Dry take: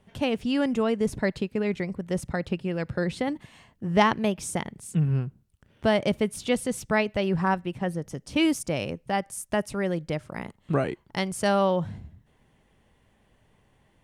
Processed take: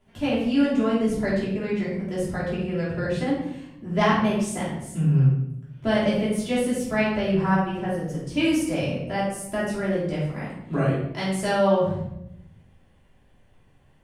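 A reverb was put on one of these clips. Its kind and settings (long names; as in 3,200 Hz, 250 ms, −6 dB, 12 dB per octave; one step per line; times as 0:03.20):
rectangular room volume 230 cubic metres, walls mixed, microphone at 3 metres
level −8 dB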